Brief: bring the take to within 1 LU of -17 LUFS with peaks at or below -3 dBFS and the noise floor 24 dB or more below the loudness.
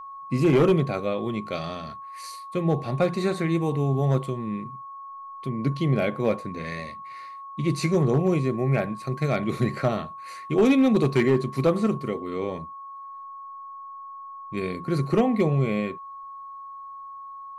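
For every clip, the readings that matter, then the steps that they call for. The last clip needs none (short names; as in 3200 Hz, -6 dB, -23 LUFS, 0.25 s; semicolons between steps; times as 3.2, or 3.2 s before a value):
clipped 0.5%; flat tops at -13.0 dBFS; steady tone 1100 Hz; tone level -37 dBFS; loudness -25.0 LUFS; peak -13.0 dBFS; loudness target -17.0 LUFS
-> clip repair -13 dBFS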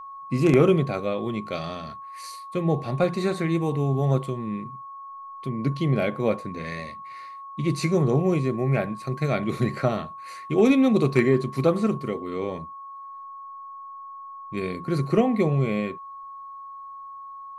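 clipped 0.0%; steady tone 1100 Hz; tone level -37 dBFS
-> notch 1100 Hz, Q 30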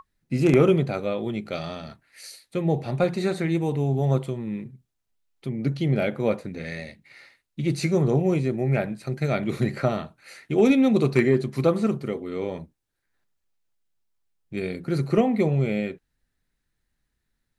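steady tone none; loudness -24.5 LUFS; peak -5.5 dBFS; loudness target -17.0 LUFS
-> gain +7.5 dB; limiter -3 dBFS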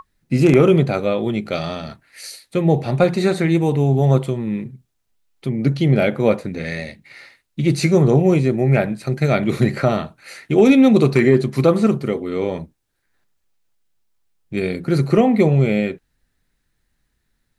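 loudness -17.5 LUFS; peak -3.0 dBFS; noise floor -71 dBFS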